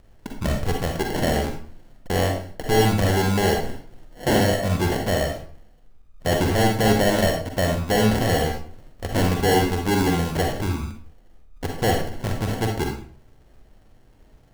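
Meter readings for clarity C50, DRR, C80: 3.5 dB, 2.0 dB, 9.0 dB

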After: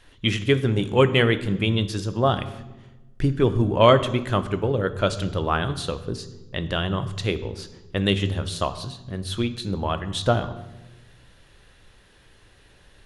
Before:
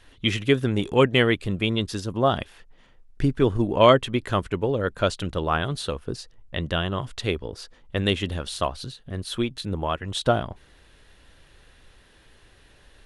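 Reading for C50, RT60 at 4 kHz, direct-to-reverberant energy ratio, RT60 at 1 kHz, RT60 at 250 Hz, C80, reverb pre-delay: 13.5 dB, 0.80 s, 11.0 dB, 1.0 s, 1.5 s, 15.5 dB, 3 ms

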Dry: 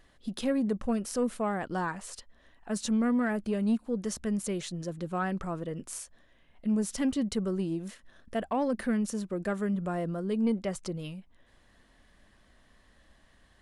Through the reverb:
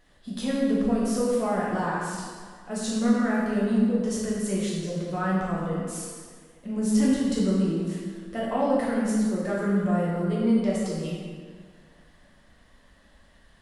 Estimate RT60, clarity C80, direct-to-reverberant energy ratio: 1.8 s, 1.0 dB, −6.5 dB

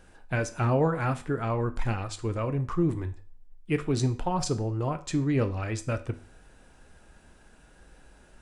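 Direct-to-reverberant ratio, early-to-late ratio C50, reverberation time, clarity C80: 8.5 dB, 15.5 dB, 0.40 s, 21.0 dB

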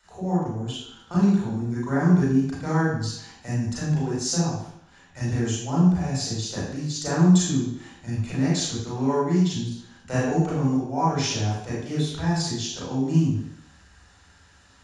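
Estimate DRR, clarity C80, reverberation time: −8.0 dB, 3.5 dB, 0.70 s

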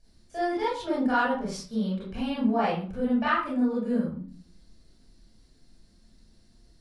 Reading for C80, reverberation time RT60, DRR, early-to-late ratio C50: 8.0 dB, 0.40 s, −8.0 dB, 1.5 dB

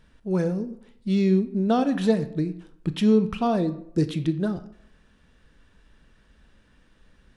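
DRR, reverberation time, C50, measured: 11.0 dB, 0.70 s, 13.5 dB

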